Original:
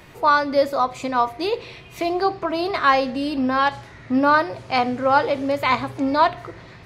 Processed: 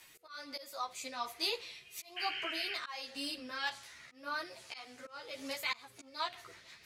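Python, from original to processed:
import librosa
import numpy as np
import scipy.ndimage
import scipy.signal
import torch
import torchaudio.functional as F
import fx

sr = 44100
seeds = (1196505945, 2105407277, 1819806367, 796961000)

y = fx.rotary_switch(x, sr, hz=1.2, then_hz=6.0, switch_at_s=5.23)
y = fx.auto_swell(y, sr, attack_ms=407.0)
y = fx.spec_paint(y, sr, seeds[0], shape='noise', start_s=2.16, length_s=0.58, low_hz=1400.0, high_hz=3200.0, level_db=-35.0)
y = librosa.effects.preemphasis(y, coef=0.97, zi=[0.0])
y = fx.ensemble(y, sr)
y = y * 10.0 ** (7.0 / 20.0)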